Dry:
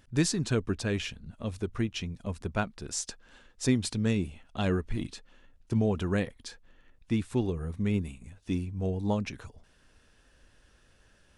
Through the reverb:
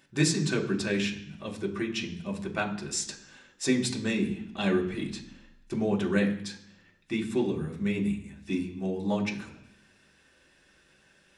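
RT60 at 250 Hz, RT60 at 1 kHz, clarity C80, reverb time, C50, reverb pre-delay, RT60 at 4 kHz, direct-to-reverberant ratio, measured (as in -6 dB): 0.90 s, 0.65 s, 13.5 dB, 0.65 s, 10.5 dB, 3 ms, 0.80 s, -1.0 dB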